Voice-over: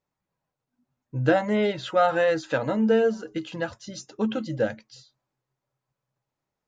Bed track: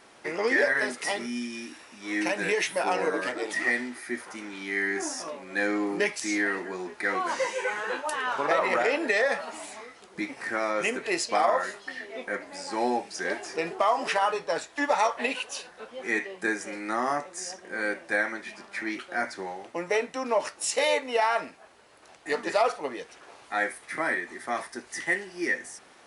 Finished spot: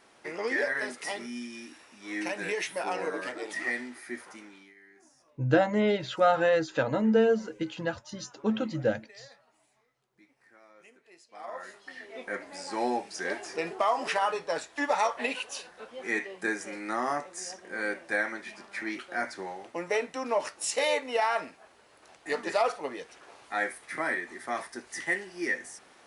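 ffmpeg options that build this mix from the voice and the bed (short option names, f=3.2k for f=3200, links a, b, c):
-filter_complex "[0:a]adelay=4250,volume=-2dB[a];[1:a]volume=21dB,afade=t=out:st=4.25:d=0.49:silence=0.0668344,afade=t=in:st=11.32:d=1.09:silence=0.0473151[b];[a][b]amix=inputs=2:normalize=0"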